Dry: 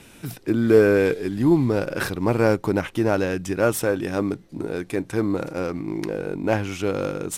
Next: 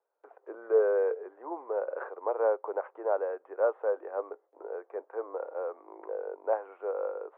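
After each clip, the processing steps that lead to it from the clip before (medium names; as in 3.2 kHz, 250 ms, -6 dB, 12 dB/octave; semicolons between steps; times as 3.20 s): inverse Chebyshev low-pass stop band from 4.9 kHz, stop band 70 dB; gate with hold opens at -35 dBFS; steep high-pass 450 Hz 48 dB/octave; trim -4.5 dB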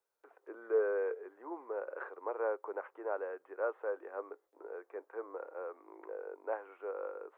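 peaking EQ 650 Hz -14.5 dB 2 oct; trim +4.5 dB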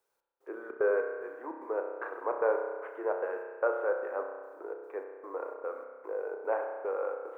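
trance gate "xx..xxx." 149 bpm -60 dB; spring tank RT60 1.6 s, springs 31 ms, chirp 40 ms, DRR 3 dB; trim +6 dB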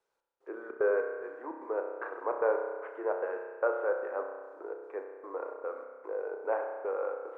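distance through air 62 m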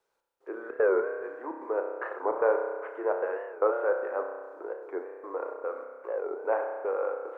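warped record 45 rpm, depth 160 cents; trim +3.5 dB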